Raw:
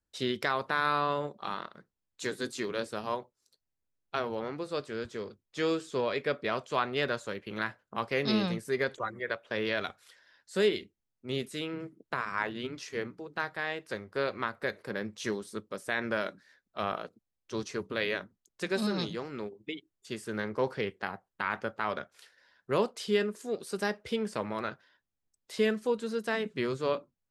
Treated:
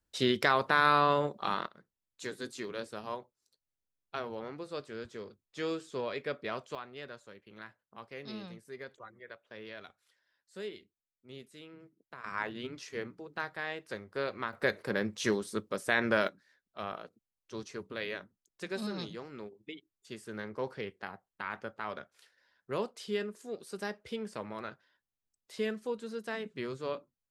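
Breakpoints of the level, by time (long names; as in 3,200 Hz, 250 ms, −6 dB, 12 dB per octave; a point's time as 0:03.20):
+3.5 dB
from 0:01.67 −5.5 dB
from 0:06.75 −15 dB
from 0:12.24 −3.5 dB
from 0:14.53 +3.5 dB
from 0:16.28 −6.5 dB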